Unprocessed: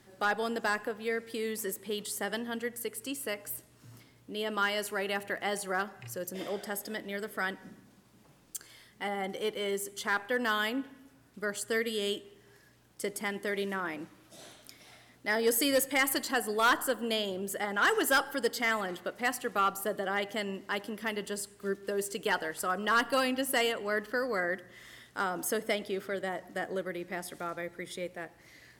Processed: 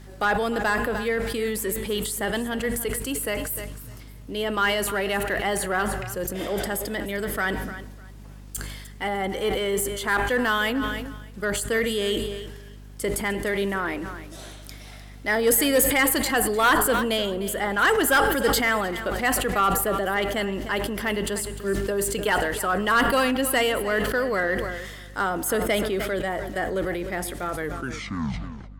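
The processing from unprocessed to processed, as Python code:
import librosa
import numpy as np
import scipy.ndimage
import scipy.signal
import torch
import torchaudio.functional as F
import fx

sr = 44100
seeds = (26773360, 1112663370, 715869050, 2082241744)

p1 = fx.tape_stop_end(x, sr, length_s=1.27)
p2 = fx.dynamic_eq(p1, sr, hz=5500.0, q=2.0, threshold_db=-55.0, ratio=4.0, max_db=-7)
p3 = 10.0 ** (-32.5 / 20.0) * np.tanh(p2 / 10.0 ** (-32.5 / 20.0))
p4 = p2 + (p3 * 10.0 ** (-7.0 / 20.0))
p5 = fx.add_hum(p4, sr, base_hz=50, snr_db=18)
p6 = p5 + fx.echo_feedback(p5, sr, ms=302, feedback_pct=24, wet_db=-15.0, dry=0)
p7 = fx.sustainer(p6, sr, db_per_s=38.0)
y = p7 * 10.0 ** (5.0 / 20.0)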